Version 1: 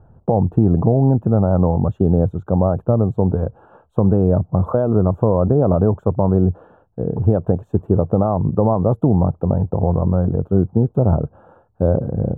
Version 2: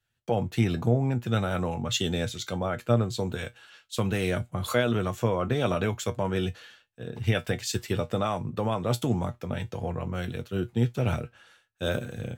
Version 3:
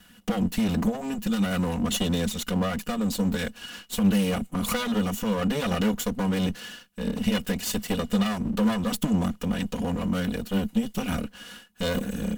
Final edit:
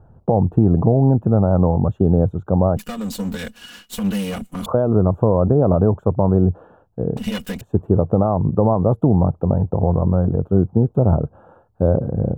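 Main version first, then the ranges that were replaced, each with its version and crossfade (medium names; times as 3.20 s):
1
2.77–4.66 s: from 3
7.17–7.61 s: from 3
not used: 2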